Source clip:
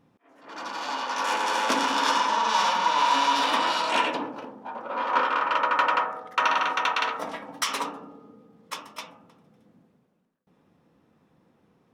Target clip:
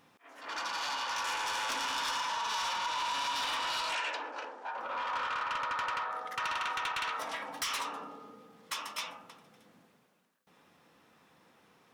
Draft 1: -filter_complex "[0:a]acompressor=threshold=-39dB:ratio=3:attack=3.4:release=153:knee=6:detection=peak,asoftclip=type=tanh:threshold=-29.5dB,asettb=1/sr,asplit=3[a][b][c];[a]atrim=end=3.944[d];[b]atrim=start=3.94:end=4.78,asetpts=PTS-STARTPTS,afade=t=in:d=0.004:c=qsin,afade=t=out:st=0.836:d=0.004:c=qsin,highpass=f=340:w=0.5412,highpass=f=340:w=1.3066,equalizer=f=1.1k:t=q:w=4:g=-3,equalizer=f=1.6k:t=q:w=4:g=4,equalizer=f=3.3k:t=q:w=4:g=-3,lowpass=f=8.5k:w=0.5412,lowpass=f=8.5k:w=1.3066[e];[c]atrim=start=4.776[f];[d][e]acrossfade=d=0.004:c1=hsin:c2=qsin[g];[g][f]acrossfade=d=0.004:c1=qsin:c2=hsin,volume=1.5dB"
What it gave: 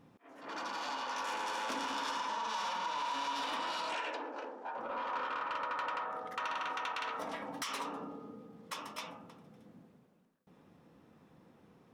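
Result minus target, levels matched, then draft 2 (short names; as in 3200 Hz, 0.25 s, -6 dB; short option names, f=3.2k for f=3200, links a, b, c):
500 Hz band +6.0 dB
-filter_complex "[0:a]acompressor=threshold=-39dB:ratio=3:attack=3.4:release=153:knee=6:detection=peak,tiltshelf=f=650:g=-9,asoftclip=type=tanh:threshold=-29.5dB,asettb=1/sr,asplit=3[a][b][c];[a]atrim=end=3.944[d];[b]atrim=start=3.94:end=4.78,asetpts=PTS-STARTPTS,afade=t=in:d=0.004:c=qsin,afade=t=out:st=0.836:d=0.004:c=qsin,highpass=f=340:w=0.5412,highpass=f=340:w=1.3066,equalizer=f=1.1k:t=q:w=4:g=-3,equalizer=f=1.6k:t=q:w=4:g=4,equalizer=f=3.3k:t=q:w=4:g=-3,lowpass=f=8.5k:w=0.5412,lowpass=f=8.5k:w=1.3066[e];[c]atrim=start=4.776[f];[d][e]acrossfade=d=0.004:c1=hsin:c2=qsin[g];[g][f]acrossfade=d=0.004:c1=qsin:c2=hsin,volume=1.5dB"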